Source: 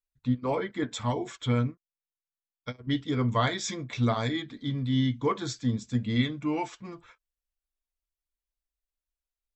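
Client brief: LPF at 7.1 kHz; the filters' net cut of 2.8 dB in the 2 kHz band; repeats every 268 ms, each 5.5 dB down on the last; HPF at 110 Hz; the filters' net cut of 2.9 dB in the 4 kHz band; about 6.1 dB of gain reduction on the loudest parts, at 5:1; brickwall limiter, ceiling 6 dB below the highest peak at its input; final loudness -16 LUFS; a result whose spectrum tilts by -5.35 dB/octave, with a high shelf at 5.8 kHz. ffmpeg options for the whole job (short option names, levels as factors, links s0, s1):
-af "highpass=110,lowpass=7100,equalizer=f=2000:t=o:g=-3,equalizer=f=4000:t=o:g=-5,highshelf=f=5800:g=8,acompressor=threshold=0.0398:ratio=5,alimiter=level_in=1.19:limit=0.0631:level=0:latency=1,volume=0.841,aecho=1:1:268|536|804|1072|1340|1608|1876:0.531|0.281|0.149|0.079|0.0419|0.0222|0.0118,volume=8.91"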